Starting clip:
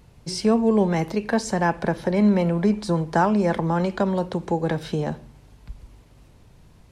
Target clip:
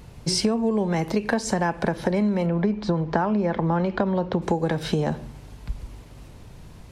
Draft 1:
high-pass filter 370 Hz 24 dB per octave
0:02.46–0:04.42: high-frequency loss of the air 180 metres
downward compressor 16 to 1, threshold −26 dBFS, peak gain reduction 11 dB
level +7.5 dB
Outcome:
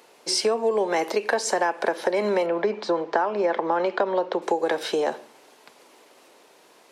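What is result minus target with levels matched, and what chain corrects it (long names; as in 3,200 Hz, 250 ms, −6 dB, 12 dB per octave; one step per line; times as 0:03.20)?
500 Hz band +3.5 dB
0:02.46–0:04.42: high-frequency loss of the air 180 metres
downward compressor 16 to 1, threshold −26 dBFS, peak gain reduction 13.5 dB
level +7.5 dB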